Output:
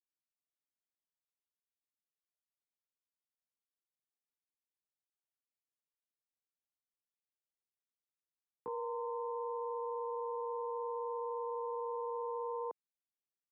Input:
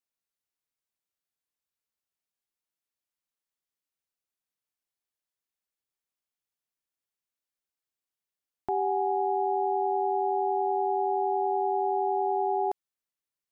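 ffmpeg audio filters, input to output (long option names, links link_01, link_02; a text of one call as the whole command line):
ffmpeg -i in.wav -af "afreqshift=-13,asetrate=55563,aresample=44100,atempo=0.793701,bandpass=frequency=310:width_type=q:width=0.72:csg=0,volume=-7.5dB" out.wav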